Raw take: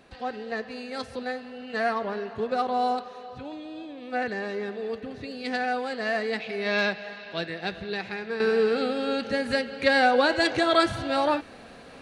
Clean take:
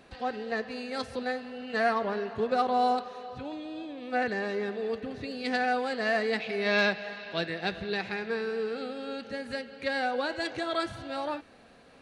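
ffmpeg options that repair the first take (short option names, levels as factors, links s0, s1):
-af "asetnsamples=n=441:p=0,asendcmd='8.4 volume volume -9.5dB',volume=1"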